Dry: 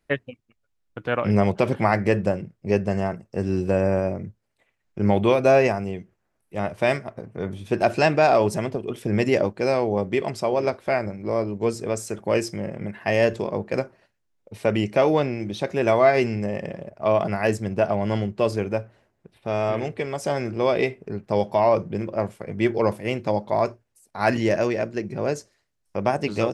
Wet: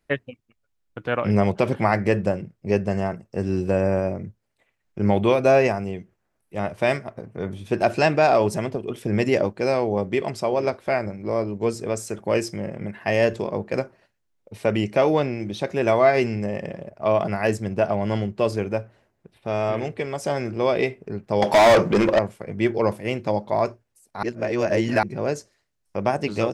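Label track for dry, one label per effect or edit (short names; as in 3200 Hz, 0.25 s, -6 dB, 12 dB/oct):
21.420000	22.190000	overdrive pedal drive 28 dB, tone 7400 Hz, clips at -7.5 dBFS
24.230000	25.030000	reverse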